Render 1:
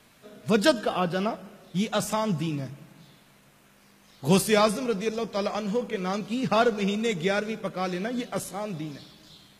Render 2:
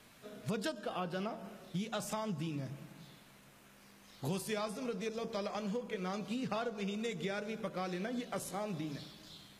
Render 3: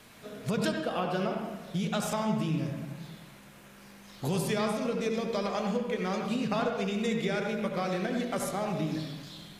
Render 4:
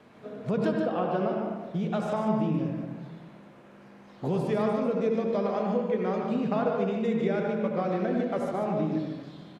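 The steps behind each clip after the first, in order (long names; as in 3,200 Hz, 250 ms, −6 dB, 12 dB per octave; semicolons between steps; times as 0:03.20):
hum removal 75.71 Hz, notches 15; downward compressor 6 to 1, threshold −33 dBFS, peak gain reduction 17 dB; level −2.5 dB
convolution reverb RT60 0.80 s, pre-delay 66 ms, DRR 2.5 dB; level +6 dB
resonant band-pass 390 Hz, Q 0.54; single-tap delay 148 ms −6 dB; level +4 dB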